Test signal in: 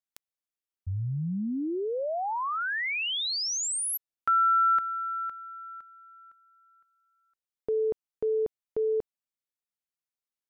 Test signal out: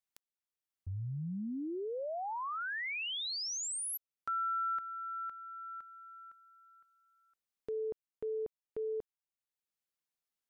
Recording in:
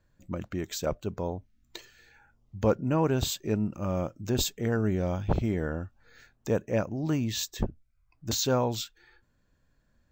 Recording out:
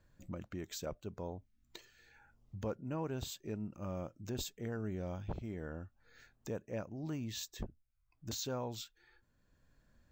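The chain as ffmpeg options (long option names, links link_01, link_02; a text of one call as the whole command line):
ffmpeg -i in.wav -af "acompressor=threshold=-43dB:ratio=2:attack=0.37:release=701:detection=rms" out.wav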